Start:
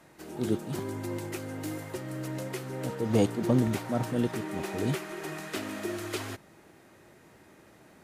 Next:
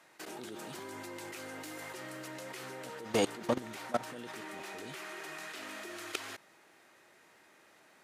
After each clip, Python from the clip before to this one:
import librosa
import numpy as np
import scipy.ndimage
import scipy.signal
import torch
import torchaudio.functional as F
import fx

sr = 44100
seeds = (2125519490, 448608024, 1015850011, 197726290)

y = fx.highpass(x, sr, hz=1300.0, slope=6)
y = fx.high_shelf(y, sr, hz=8300.0, db=-7.5)
y = fx.level_steps(y, sr, step_db=18)
y = F.gain(torch.from_numpy(y), 9.5).numpy()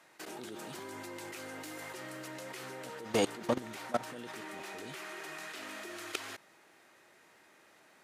y = x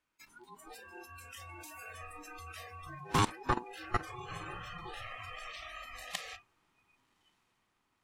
y = fx.echo_diffused(x, sr, ms=1147, feedback_pct=52, wet_db=-12.0)
y = y * np.sin(2.0 * np.pi * 610.0 * np.arange(len(y)) / sr)
y = fx.noise_reduce_blind(y, sr, reduce_db=23)
y = F.gain(torch.from_numpy(y), 3.5).numpy()